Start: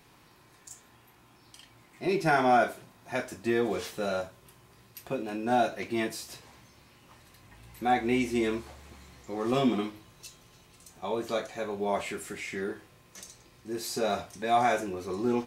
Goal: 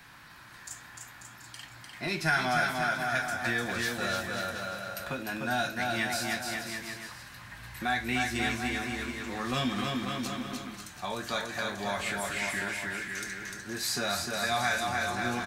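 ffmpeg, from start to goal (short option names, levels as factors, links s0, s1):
-filter_complex "[0:a]equalizer=f=400:t=o:w=0.67:g=-10,equalizer=f=1600:t=o:w=0.67:g=12,equalizer=f=4000:t=o:w=0.67:g=3,aecho=1:1:300|540|732|885.6|1008:0.631|0.398|0.251|0.158|0.1,acrossover=split=140|3000[s0][s1][s2];[s1]acompressor=threshold=0.01:ratio=2[s3];[s0][s3][s2]amix=inputs=3:normalize=0,volume=1.5"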